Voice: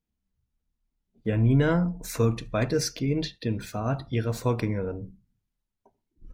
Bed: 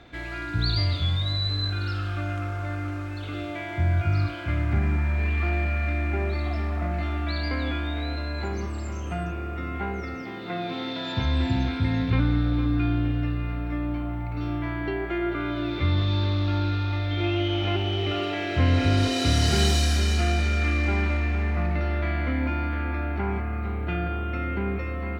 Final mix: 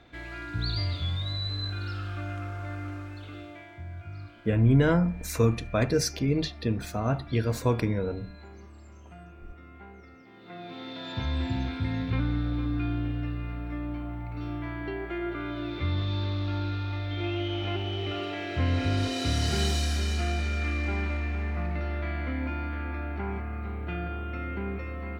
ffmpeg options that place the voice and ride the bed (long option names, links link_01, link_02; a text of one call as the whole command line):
ffmpeg -i stem1.wav -i stem2.wav -filter_complex "[0:a]adelay=3200,volume=0.5dB[link_01];[1:a]volume=6.5dB,afade=type=out:start_time=2.92:duration=0.91:silence=0.251189,afade=type=in:start_time=10.27:duration=0.96:silence=0.251189[link_02];[link_01][link_02]amix=inputs=2:normalize=0" out.wav